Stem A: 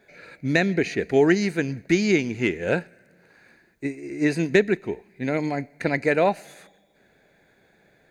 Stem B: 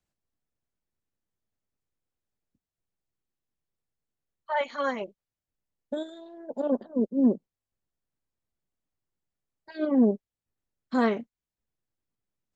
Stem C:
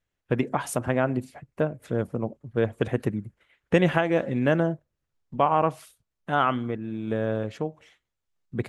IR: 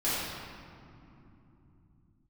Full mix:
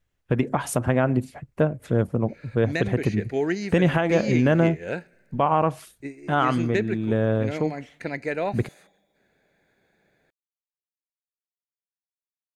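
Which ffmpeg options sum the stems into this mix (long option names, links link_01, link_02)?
-filter_complex "[0:a]adelay=2200,volume=-7dB[link_01];[2:a]lowshelf=frequency=150:gain=7,volume=3dB[link_02];[link_01][link_02]amix=inputs=2:normalize=0,alimiter=limit=-9.5dB:level=0:latency=1:release=116"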